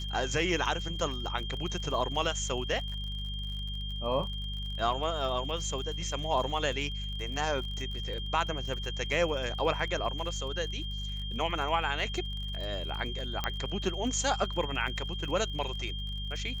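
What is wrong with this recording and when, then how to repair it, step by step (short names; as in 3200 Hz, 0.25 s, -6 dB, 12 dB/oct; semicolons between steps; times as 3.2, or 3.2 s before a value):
crackle 47/s -39 dBFS
hum 50 Hz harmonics 4 -37 dBFS
tone 3200 Hz -39 dBFS
13.44 pop -15 dBFS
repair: de-click; notch 3200 Hz, Q 30; de-hum 50 Hz, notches 4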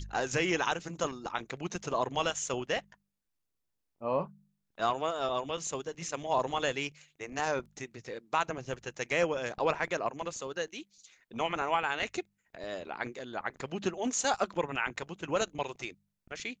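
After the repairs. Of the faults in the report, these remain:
none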